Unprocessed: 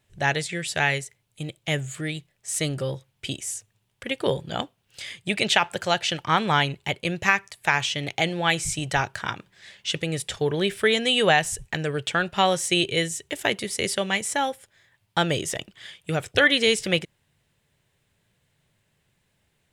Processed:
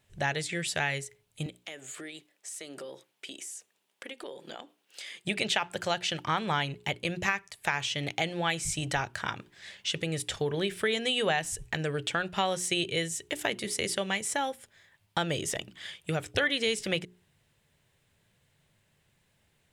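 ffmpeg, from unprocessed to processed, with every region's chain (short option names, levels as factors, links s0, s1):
-filter_complex "[0:a]asettb=1/sr,asplit=3[s0][s1][s2];[s0]atrim=end=1.464[s3];[s1]atrim=start=1.46:end=5.25,asetpts=PTS-STARTPTS,afade=t=in:d=0.004:c=qsin,afade=t=out:st=3.786:d=0.004:c=qsin,highpass=f=260:w=0.5412,highpass=f=260:w=1.3066,acompressor=threshold=0.0126:ratio=8:attack=3.2:release=140:knee=1:detection=peak[s4];[s2]atrim=start=5.246[s5];[s3][s4]acrossfade=d=0.004:c1=hsin:c2=qsin[s6];[s6][s5]acrossfade=d=0.004:c1=qsin:c2=hsin,bandreject=f=60:t=h:w=6,bandreject=f=120:t=h:w=6,bandreject=f=180:t=h:w=6,bandreject=f=240:t=h:w=6,bandreject=f=300:t=h:w=6,bandreject=f=360:t=h:w=6,bandreject=f=420:t=h:w=6,acompressor=threshold=0.0282:ratio=2"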